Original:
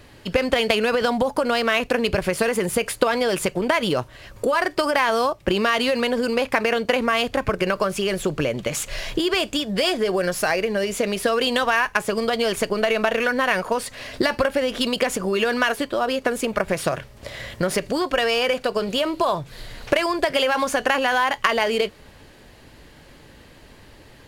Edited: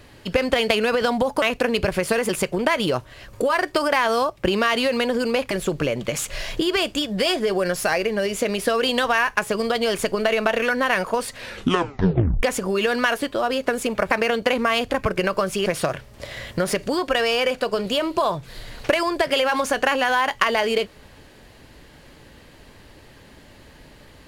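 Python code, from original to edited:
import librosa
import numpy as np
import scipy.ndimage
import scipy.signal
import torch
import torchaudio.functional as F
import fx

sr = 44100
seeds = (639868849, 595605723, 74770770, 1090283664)

y = fx.edit(x, sr, fx.cut(start_s=1.42, length_s=0.3),
    fx.cut(start_s=2.59, length_s=0.73),
    fx.move(start_s=6.54, length_s=1.55, to_s=16.69),
    fx.tape_stop(start_s=13.95, length_s=1.06), tone=tone)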